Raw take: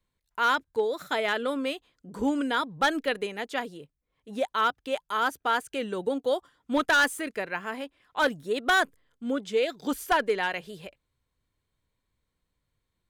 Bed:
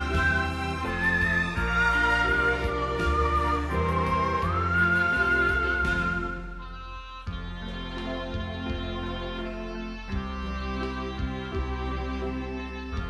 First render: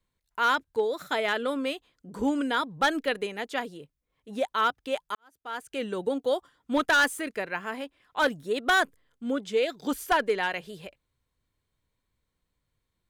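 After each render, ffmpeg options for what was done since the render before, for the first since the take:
ffmpeg -i in.wav -filter_complex "[0:a]asplit=2[link_01][link_02];[link_01]atrim=end=5.15,asetpts=PTS-STARTPTS,afade=type=out:start_time=5.146:duration=0.004:curve=hsin[link_03];[link_02]atrim=start=5.15,asetpts=PTS-STARTPTS,afade=type=in:duration=0.67:curve=qua[link_04];[link_03][link_04]concat=n=2:v=0:a=1" out.wav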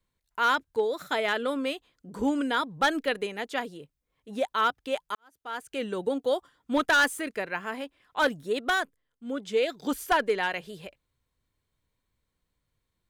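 ffmpeg -i in.wav -filter_complex "[0:a]asplit=3[link_01][link_02][link_03];[link_01]atrim=end=8.94,asetpts=PTS-STARTPTS,afade=type=out:start_time=8.56:duration=0.38:silence=0.281838[link_04];[link_02]atrim=start=8.94:end=9.15,asetpts=PTS-STARTPTS,volume=-11dB[link_05];[link_03]atrim=start=9.15,asetpts=PTS-STARTPTS,afade=type=in:duration=0.38:silence=0.281838[link_06];[link_04][link_05][link_06]concat=n=3:v=0:a=1" out.wav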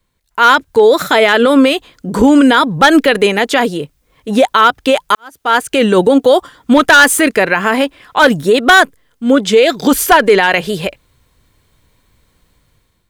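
ffmpeg -i in.wav -af "dynaudnorm=framelen=250:gausssize=5:maxgain=11dB,alimiter=level_in=13dB:limit=-1dB:release=50:level=0:latency=1" out.wav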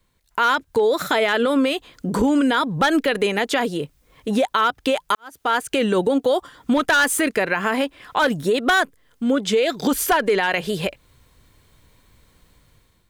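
ffmpeg -i in.wav -af "acompressor=threshold=-24dB:ratio=2" out.wav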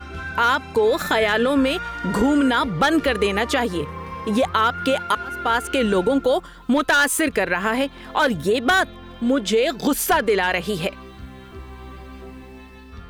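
ffmpeg -i in.wav -i bed.wav -filter_complex "[1:a]volume=-7.5dB[link_01];[0:a][link_01]amix=inputs=2:normalize=0" out.wav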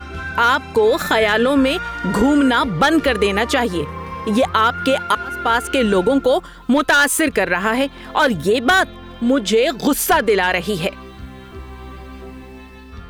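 ffmpeg -i in.wav -af "volume=3.5dB" out.wav

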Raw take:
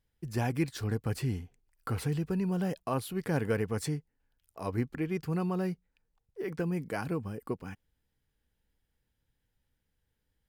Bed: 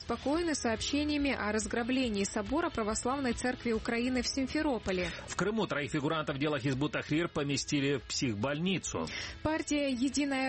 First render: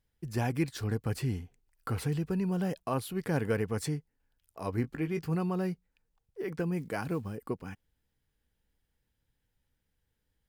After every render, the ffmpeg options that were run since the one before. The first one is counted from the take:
ffmpeg -i in.wav -filter_complex "[0:a]asettb=1/sr,asplit=3[link_01][link_02][link_03];[link_01]atrim=end=4.824[link_04];[link_02]atrim=start=4.82:end=5.35,asetpts=PTS-STARTPTS,afade=type=in:duration=0.004:curve=qsin,afade=type=out:start_time=0.526:duration=0.004:curve=qsin,asplit=2[link_05][link_06];[link_06]adelay=18,volume=-8dB[link_07];[link_05][link_07]amix=inputs=2:normalize=0,atrim=end_sample=23373[link_08];[link_03]atrim=start=5.346[link_09];[link_04][link_08]acrossfade=duration=0.004:curve1=hsin:curve2=qsin[link_10];[link_10][link_09]acrossfade=duration=0.004:curve1=qsin:curve2=hsin,asettb=1/sr,asplit=3[link_11][link_12][link_13];[link_11]atrim=end=6.784[link_14];[link_12]atrim=start=6.78:end=7.36,asetpts=PTS-STARTPTS,afade=type=in:duration=0.004:curve=qsin,afade=type=out:start_time=0.576:duration=0.004:curve=qsin,acrusher=bits=8:mode=log:mix=0:aa=0.000001[link_15];[link_13]atrim=start=7.356[link_16];[link_14][link_15]acrossfade=duration=0.004:curve1=hsin:curve2=qsin[link_17];[link_17][link_16]acrossfade=duration=0.004:curve1=qsin:curve2=hsin" out.wav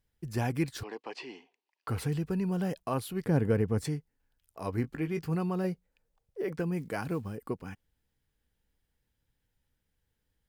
ffmpeg -i in.wav -filter_complex "[0:a]asettb=1/sr,asplit=3[link_01][link_02][link_03];[link_01]atrim=end=0.834[link_04];[link_02]atrim=start=0.83:end=1.88,asetpts=PTS-STARTPTS,afade=type=in:duration=0.004:curve=qsin,afade=type=out:start_time=1.046:duration=0.004:curve=qsin,highpass=frequency=360:width=0.5412,highpass=frequency=360:width=1.3066,equalizer=frequency=490:width_type=q:width=4:gain=-5,equalizer=frequency=950:width_type=q:width=4:gain=8,equalizer=frequency=1400:width_type=q:width=4:gain=-10,equalizer=frequency=2700:width_type=q:width=4:gain=5,lowpass=frequency=5200:width=0.5412,lowpass=frequency=5200:width=1.3066[link_05];[link_03]atrim=start=1.876[link_06];[link_04][link_05]acrossfade=duration=0.004:curve1=hsin:curve2=qsin[link_07];[link_07][link_06]acrossfade=duration=0.004:curve1=qsin:curve2=hsin,asettb=1/sr,asplit=3[link_08][link_09][link_10];[link_08]atrim=end=3.254[link_11];[link_09]atrim=start=3.25:end=3.85,asetpts=PTS-STARTPTS,afade=type=in:duration=0.004:curve=qsin,afade=type=out:start_time=0.596:duration=0.004:curve=qsin,tiltshelf=frequency=700:gain=5.5[link_12];[link_10]atrim=start=3.846[link_13];[link_11][link_12]acrossfade=duration=0.004:curve1=hsin:curve2=qsin[link_14];[link_14][link_13]acrossfade=duration=0.004:curve1=qsin:curve2=hsin,asettb=1/sr,asplit=3[link_15][link_16][link_17];[link_15]atrim=end=5.644[link_18];[link_16]atrim=start=5.64:end=6.52,asetpts=PTS-STARTPTS,afade=type=in:duration=0.004:curve=qsin,afade=type=out:start_time=0.876:duration=0.004:curve=qsin,equalizer=frequency=560:width=2.2:gain=9[link_19];[link_17]atrim=start=6.516[link_20];[link_18][link_19]acrossfade=duration=0.004:curve1=hsin:curve2=qsin[link_21];[link_21][link_20]acrossfade=duration=0.004:curve1=qsin:curve2=hsin" out.wav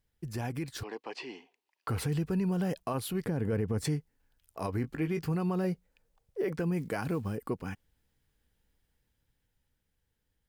ffmpeg -i in.wav -af "alimiter=level_in=3dB:limit=-24dB:level=0:latency=1:release=87,volume=-3dB,dynaudnorm=framelen=240:gausssize=13:maxgain=4dB" out.wav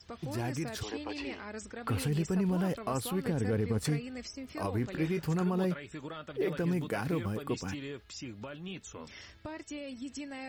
ffmpeg -i in.wav -i bed.wav -filter_complex "[1:a]volume=-10.5dB[link_01];[0:a][link_01]amix=inputs=2:normalize=0" out.wav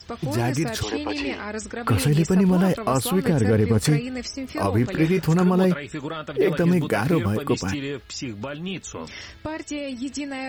ffmpeg -i in.wav -af "volume=11.5dB" out.wav

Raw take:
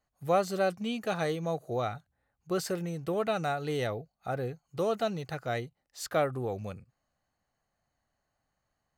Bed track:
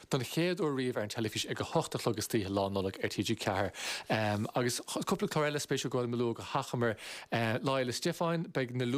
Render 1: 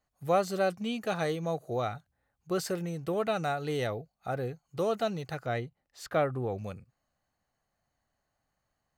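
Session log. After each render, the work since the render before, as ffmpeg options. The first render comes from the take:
ffmpeg -i in.wav -filter_complex "[0:a]asettb=1/sr,asplit=3[link_01][link_02][link_03];[link_01]atrim=end=5.464[link_04];[link_02]atrim=start=5.46:end=6.58,asetpts=PTS-STARTPTS,afade=type=in:duration=0.004:curve=qsin,afade=type=out:start_time=1.116:duration=0.004:curve=qsin,bass=frequency=250:gain=2,treble=frequency=4000:gain=-8[link_05];[link_03]atrim=start=6.576[link_06];[link_04][link_05]acrossfade=duration=0.004:curve1=hsin:curve2=qsin[link_07];[link_07][link_06]acrossfade=duration=0.004:curve1=qsin:curve2=hsin" out.wav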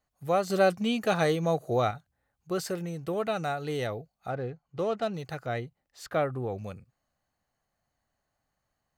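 ffmpeg -i in.wav -filter_complex "[0:a]asettb=1/sr,asplit=3[link_01][link_02][link_03];[link_01]atrim=end=4.304[link_04];[link_02]atrim=start=4.3:end=5.14,asetpts=PTS-STARTPTS,afade=type=in:duration=0.004:curve=qsin,afade=type=out:start_time=0.836:duration=0.004:curve=qsin,adynamicsmooth=sensitivity=7.5:basefreq=3000[link_05];[link_03]atrim=start=5.136[link_06];[link_04][link_05]acrossfade=duration=0.004:curve1=hsin:curve2=qsin[link_07];[link_07][link_06]acrossfade=duration=0.004:curve1=qsin:curve2=hsin,asplit=3[link_08][link_09][link_10];[link_08]atrim=end=0.502[link_11];[link_09]atrim=start=0.498:end=1.912,asetpts=PTS-STARTPTS,volume=5.5dB[link_12];[link_10]atrim=start=1.908[link_13];[link_11][link_12]acrossfade=duration=0.004:curve1=hsin:curve2=hsin[link_14];[link_14][link_13]acrossfade=duration=0.004:curve1=hsin:curve2=hsin" out.wav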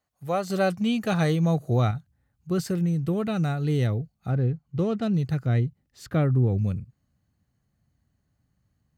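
ffmpeg -i in.wav -af "highpass=69,asubboost=boost=9:cutoff=230" out.wav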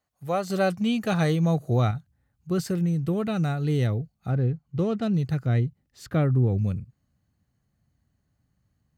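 ffmpeg -i in.wav -af anull out.wav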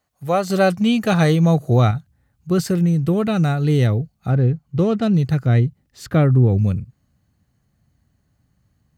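ffmpeg -i in.wav -af "volume=7.5dB" out.wav

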